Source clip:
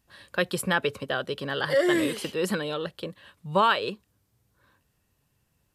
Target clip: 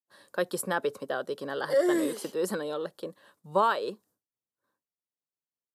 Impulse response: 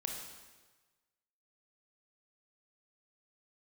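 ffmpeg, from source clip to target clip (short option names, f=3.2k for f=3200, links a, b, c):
-af "agate=range=-33dB:threshold=-54dB:ratio=3:detection=peak,highpass=280,equalizer=f=2.6k:w=1.1:g=-14.5"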